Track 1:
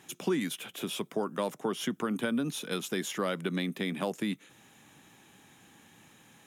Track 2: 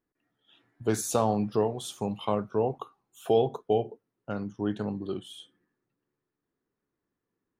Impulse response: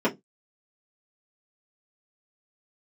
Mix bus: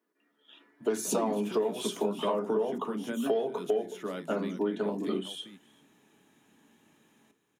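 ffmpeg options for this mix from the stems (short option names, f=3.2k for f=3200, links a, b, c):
-filter_complex "[0:a]adelay=850,volume=-1.5dB,afade=t=out:st=2.54:d=0.37:silence=0.334965,asplit=3[a][b][c];[b]volume=-15dB[d];[c]volume=-8.5dB[e];[1:a]highpass=f=990:p=1,asoftclip=type=tanh:threshold=-20.5dB,volume=2dB,asplit=4[f][g][h][i];[g]volume=-8dB[j];[h]volume=-23.5dB[k];[i]apad=whole_len=322424[l];[a][l]sidechaincompress=threshold=-41dB:ratio=8:attack=5.6:release=102[m];[2:a]atrim=start_sample=2205[n];[d][j]amix=inputs=2:normalize=0[o];[o][n]afir=irnorm=-1:irlink=0[p];[e][k]amix=inputs=2:normalize=0,aecho=0:1:387:1[q];[m][f][p][q]amix=inputs=4:normalize=0,acompressor=threshold=-26dB:ratio=6"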